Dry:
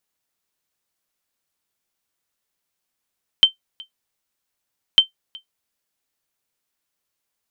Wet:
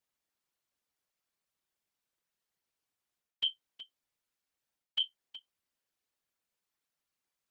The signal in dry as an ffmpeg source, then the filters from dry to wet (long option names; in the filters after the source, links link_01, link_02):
-f lavfi -i "aevalsrc='0.794*(sin(2*PI*3110*mod(t,1.55))*exp(-6.91*mod(t,1.55)/0.12)+0.0501*sin(2*PI*3110*max(mod(t,1.55)-0.37,0))*exp(-6.91*max(mod(t,1.55)-0.37,0)/0.12))':duration=3.1:sample_rate=44100"
-af "highshelf=frequency=6300:gain=-5.5,areverse,acompressor=threshold=-22dB:ratio=20,areverse,afftfilt=real='hypot(re,im)*cos(2*PI*random(0))':imag='hypot(re,im)*sin(2*PI*random(1))':win_size=512:overlap=0.75"